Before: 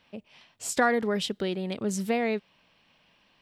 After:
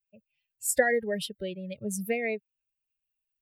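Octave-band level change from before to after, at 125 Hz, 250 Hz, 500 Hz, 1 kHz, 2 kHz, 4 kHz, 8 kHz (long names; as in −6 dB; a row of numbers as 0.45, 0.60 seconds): −4.5, −6.0, −0.5, −7.5, +0.5, −5.0, +3.0 decibels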